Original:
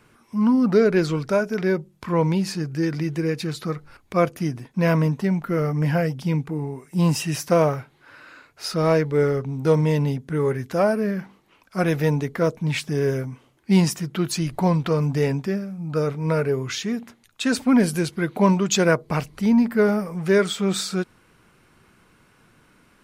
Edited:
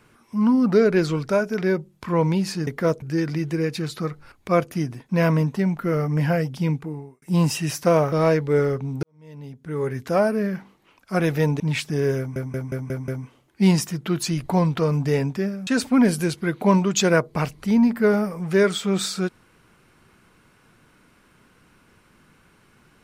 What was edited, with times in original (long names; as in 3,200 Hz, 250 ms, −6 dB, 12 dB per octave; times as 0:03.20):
0:06.37–0:06.87: fade out
0:07.77–0:08.76: remove
0:09.67–0:10.64: fade in quadratic
0:12.24–0:12.59: move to 0:02.67
0:13.17: stutter 0.18 s, 6 plays
0:15.76–0:17.42: remove